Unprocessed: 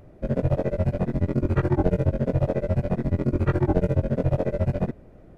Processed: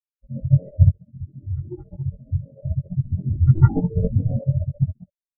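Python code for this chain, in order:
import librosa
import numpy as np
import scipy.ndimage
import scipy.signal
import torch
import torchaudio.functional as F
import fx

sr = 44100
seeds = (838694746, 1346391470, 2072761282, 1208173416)

y = fx.reverse_delay(x, sr, ms=170, wet_db=-0.5)
y = fx.band_shelf(y, sr, hz=1300.0, db=9.0, octaves=1.7)
y = fx.tube_stage(y, sr, drive_db=15.0, bias=0.45, at=(0.97, 2.58), fade=0.02)
y = fx.doubler(y, sr, ms=18.0, db=-2, at=(3.52, 4.39))
y = fx.spectral_expand(y, sr, expansion=4.0)
y = y * 10.0 ** (3.0 / 20.0)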